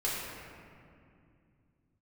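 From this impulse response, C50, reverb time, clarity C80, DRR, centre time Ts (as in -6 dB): -1.5 dB, 2.4 s, 0.5 dB, -8.0 dB, 130 ms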